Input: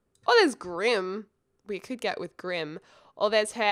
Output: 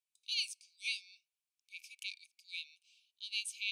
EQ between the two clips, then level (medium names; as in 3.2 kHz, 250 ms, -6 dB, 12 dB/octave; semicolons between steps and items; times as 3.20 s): brick-wall FIR high-pass 2.2 kHz; -5.5 dB